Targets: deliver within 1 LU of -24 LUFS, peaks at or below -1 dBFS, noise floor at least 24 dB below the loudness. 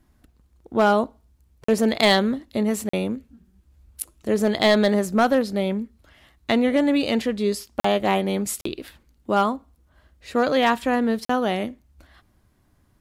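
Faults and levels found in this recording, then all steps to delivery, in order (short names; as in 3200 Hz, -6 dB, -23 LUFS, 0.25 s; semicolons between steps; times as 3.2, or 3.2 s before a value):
clipped 0.6%; flat tops at -10.0 dBFS; dropouts 5; longest dropout 44 ms; loudness -22.0 LUFS; peak -10.0 dBFS; loudness target -24.0 LUFS
-> clip repair -10 dBFS; interpolate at 1.64/2.89/7.8/8.61/11.25, 44 ms; gain -2 dB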